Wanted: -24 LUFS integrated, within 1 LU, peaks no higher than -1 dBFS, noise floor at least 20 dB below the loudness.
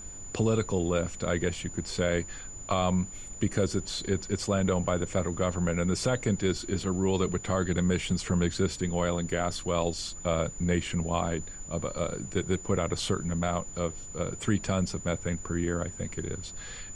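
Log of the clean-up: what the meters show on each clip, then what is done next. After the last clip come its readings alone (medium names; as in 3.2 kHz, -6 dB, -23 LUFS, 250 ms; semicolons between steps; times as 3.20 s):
steady tone 7 kHz; tone level -42 dBFS; noise floor -43 dBFS; noise floor target -50 dBFS; loudness -30.0 LUFS; peak level -14.5 dBFS; loudness target -24.0 LUFS
-> band-stop 7 kHz, Q 30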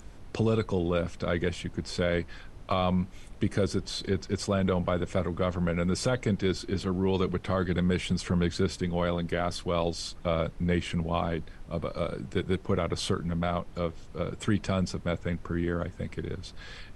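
steady tone not found; noise floor -47 dBFS; noise floor target -50 dBFS
-> noise print and reduce 6 dB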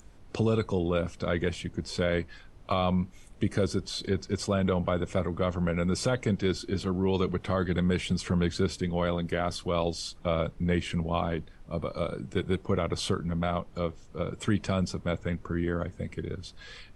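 noise floor -52 dBFS; loudness -30.0 LUFS; peak level -15.0 dBFS; loudness target -24.0 LUFS
-> trim +6 dB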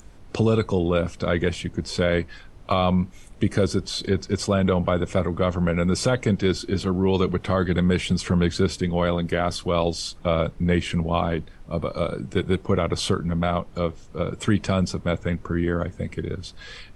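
loudness -24.0 LUFS; peak level -9.0 dBFS; noise floor -46 dBFS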